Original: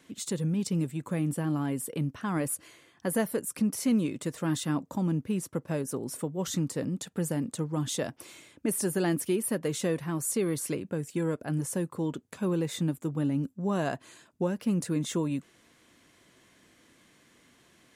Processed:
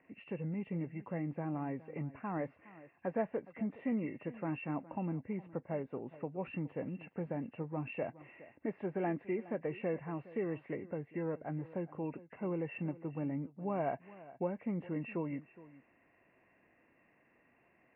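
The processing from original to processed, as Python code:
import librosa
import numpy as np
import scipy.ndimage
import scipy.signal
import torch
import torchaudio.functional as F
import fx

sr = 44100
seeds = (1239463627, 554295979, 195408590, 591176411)

y = fx.freq_compress(x, sr, knee_hz=1500.0, ratio=1.5)
y = scipy.signal.sosfilt(scipy.signal.cheby1(6, 9, 2800.0, 'lowpass', fs=sr, output='sos'), y)
y = y + 10.0 ** (-18.5 / 20.0) * np.pad(y, (int(415 * sr / 1000.0), 0))[:len(y)]
y = F.gain(torch.from_numpy(y), -1.5).numpy()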